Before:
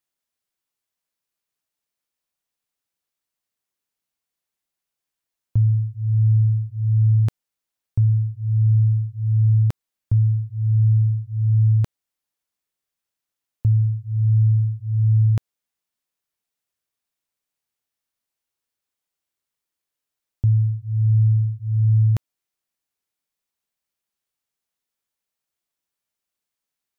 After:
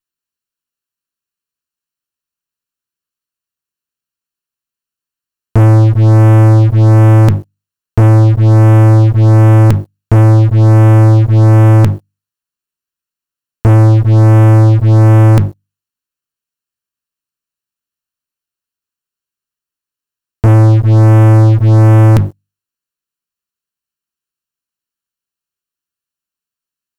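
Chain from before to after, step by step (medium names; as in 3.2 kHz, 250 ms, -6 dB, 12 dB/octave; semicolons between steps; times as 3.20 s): comb filter that takes the minimum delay 0.71 ms; hum notches 50/100/150/200/250/300 Hz; waveshaping leveller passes 5; in parallel at -7 dB: saturation -20 dBFS, distortion -16 dB; on the sum: trim +6.5 dB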